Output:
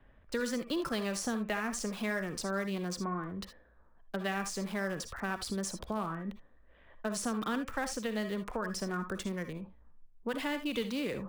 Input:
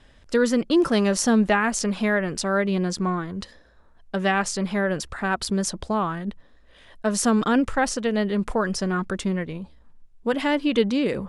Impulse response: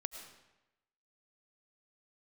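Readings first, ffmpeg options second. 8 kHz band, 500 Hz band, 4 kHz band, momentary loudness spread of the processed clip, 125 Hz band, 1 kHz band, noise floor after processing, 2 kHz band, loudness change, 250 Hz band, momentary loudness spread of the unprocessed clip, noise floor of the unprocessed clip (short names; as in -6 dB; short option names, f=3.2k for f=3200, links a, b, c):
-10.5 dB, -13.0 dB, -9.5 dB, 7 LU, -12.0 dB, -12.0 dB, -61 dBFS, -11.0 dB, -12.5 dB, -13.0 dB, 10 LU, -53 dBFS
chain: -filter_complex "[0:a]acrossover=split=190|560|1300[a][b][c][d];[a]acompressor=threshold=-36dB:ratio=4[e];[b]acompressor=threshold=-30dB:ratio=4[f];[c]acompressor=threshold=-34dB:ratio=4[g];[d]acompressor=threshold=-29dB:ratio=4[h];[e][f][g][h]amix=inputs=4:normalize=0,acrossover=split=2500[i][j];[j]acrusher=bits=6:mix=0:aa=0.000001[k];[i][k]amix=inputs=2:normalize=0[l];[1:a]atrim=start_sample=2205,atrim=end_sample=6615,asetrate=79380,aresample=44100[m];[l][m]afir=irnorm=-1:irlink=0"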